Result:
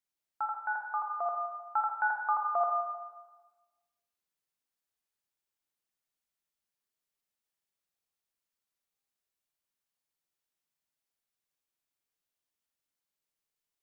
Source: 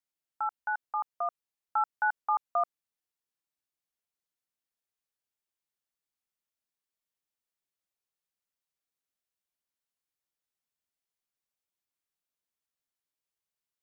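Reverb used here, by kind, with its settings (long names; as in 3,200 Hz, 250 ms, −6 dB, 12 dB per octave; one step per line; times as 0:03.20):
four-comb reverb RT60 1.3 s, DRR 2 dB
level −1 dB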